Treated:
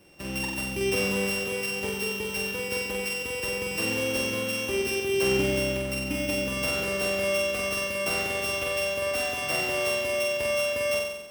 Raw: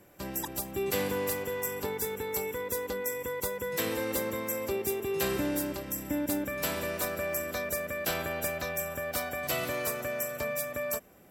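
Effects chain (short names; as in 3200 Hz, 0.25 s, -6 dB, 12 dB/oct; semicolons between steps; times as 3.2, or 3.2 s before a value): sample sorter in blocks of 16 samples; flutter echo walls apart 7.9 m, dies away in 1 s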